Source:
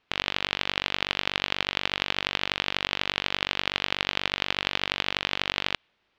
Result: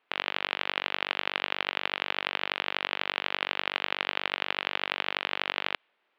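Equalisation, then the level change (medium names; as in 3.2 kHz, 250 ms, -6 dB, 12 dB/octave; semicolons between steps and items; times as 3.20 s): band-pass 370–2800 Hz; 0.0 dB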